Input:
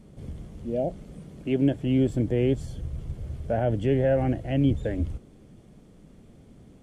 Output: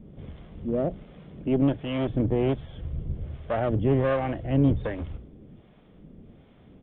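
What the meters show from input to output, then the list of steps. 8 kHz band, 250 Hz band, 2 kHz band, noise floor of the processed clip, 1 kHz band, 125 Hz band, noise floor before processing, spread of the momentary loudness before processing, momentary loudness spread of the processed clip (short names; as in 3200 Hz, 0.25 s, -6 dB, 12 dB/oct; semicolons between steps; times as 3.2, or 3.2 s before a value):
n/a, -0.5 dB, +1.5 dB, -55 dBFS, +2.5 dB, -0.5 dB, -53 dBFS, 17 LU, 20 LU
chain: notches 60/120 Hz; one-sided clip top -26.5 dBFS, bottom -15 dBFS; harmonic tremolo 1.3 Hz, depth 70%, crossover 580 Hz; downsampling 8000 Hz; gain +4.5 dB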